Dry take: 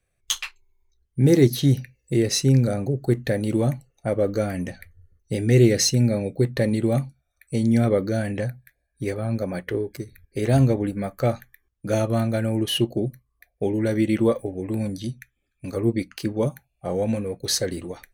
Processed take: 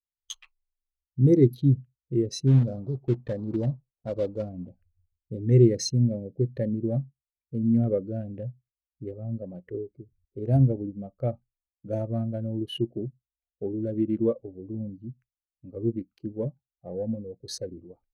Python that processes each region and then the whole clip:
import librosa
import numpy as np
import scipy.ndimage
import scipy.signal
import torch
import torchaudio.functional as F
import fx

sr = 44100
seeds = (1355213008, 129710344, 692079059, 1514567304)

y = fx.chain(x, sr, fx.block_float(bits=3),
    fx.air_absorb(metres=68.0), at=(2.47, 4.68))
y = fx.wiener(y, sr, points=25)
y = fx.spectral_expand(y, sr, expansion=1.5)
y = y * 10.0 ** (-2.0 / 20.0)